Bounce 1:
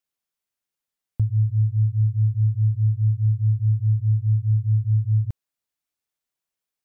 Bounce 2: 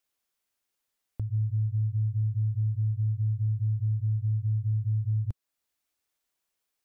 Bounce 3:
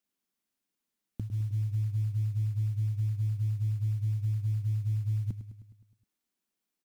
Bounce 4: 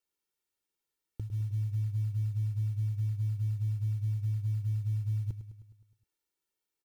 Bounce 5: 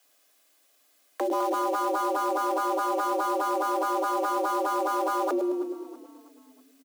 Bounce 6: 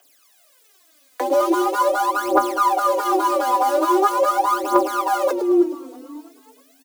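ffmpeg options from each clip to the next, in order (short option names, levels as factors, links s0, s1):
-af "equalizer=f=150:w=2.6:g=-8,acompressor=threshold=0.0631:ratio=6,alimiter=level_in=1.41:limit=0.0631:level=0:latency=1:release=373,volume=0.708,volume=1.68"
-filter_complex "[0:a]firequalizer=gain_entry='entry(110,0);entry(190,14);entry(510,0)':delay=0.05:min_phase=1,acrusher=bits=8:mode=log:mix=0:aa=0.000001,asplit=2[s0][s1];[s1]aecho=0:1:104|208|312|416|520|624|728:0.251|0.151|0.0904|0.0543|0.0326|0.0195|0.0117[s2];[s0][s2]amix=inputs=2:normalize=0,volume=0.562"
-af "aecho=1:1:2.2:0.78,volume=0.631"
-filter_complex "[0:a]aeval=exprs='0.0531*sin(PI/2*7.08*val(0)/0.0531)':c=same,asplit=5[s0][s1][s2][s3][s4];[s1]adelay=324,afreqshift=-32,volume=0.106[s5];[s2]adelay=648,afreqshift=-64,volume=0.0562[s6];[s3]adelay=972,afreqshift=-96,volume=0.0299[s7];[s4]adelay=1296,afreqshift=-128,volume=0.0158[s8];[s0][s5][s6][s7][s8]amix=inputs=5:normalize=0,afreqshift=250,volume=1.26"
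-af "aphaser=in_gain=1:out_gain=1:delay=4.1:decay=0.79:speed=0.42:type=triangular,volume=1.58"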